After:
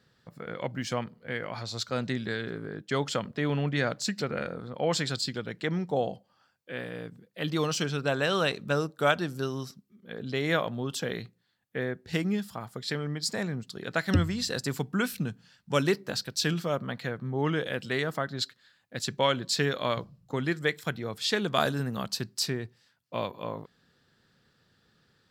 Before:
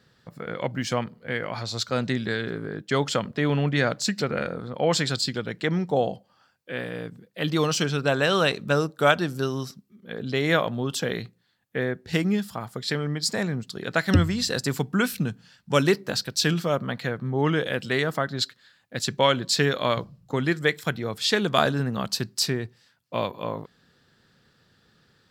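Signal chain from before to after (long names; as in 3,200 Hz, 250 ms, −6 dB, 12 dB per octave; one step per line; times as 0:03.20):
0:21.60–0:22.04: parametric band 13,000 Hz +11 dB 1.3 octaves
level −5 dB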